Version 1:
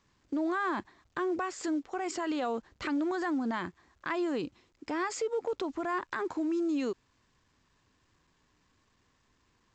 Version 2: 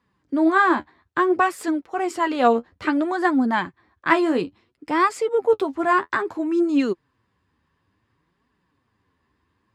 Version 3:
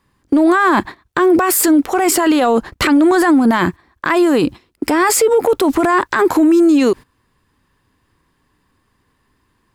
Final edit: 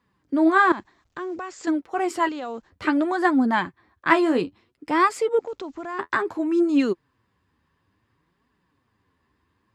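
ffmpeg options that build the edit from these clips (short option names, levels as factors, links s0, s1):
-filter_complex "[0:a]asplit=3[s0][s1][s2];[1:a]asplit=4[s3][s4][s5][s6];[s3]atrim=end=0.722[s7];[s0]atrim=start=0.718:end=1.672[s8];[s4]atrim=start=1.668:end=2.292[s9];[s1]atrim=start=2.288:end=2.702[s10];[s5]atrim=start=2.698:end=5.392[s11];[s2]atrim=start=5.388:end=5.992[s12];[s6]atrim=start=5.988[s13];[s7][s8]acrossfade=d=0.004:c1=hsin:c2=hsin[s14];[s14][s9]acrossfade=d=0.004:c1=hsin:c2=hsin[s15];[s15][s10]acrossfade=d=0.004:c1=hsin:c2=hsin[s16];[s16][s11]acrossfade=d=0.004:c1=hsin:c2=hsin[s17];[s17][s12]acrossfade=d=0.004:c1=hsin:c2=hsin[s18];[s18][s13]acrossfade=d=0.004:c1=hsin:c2=hsin"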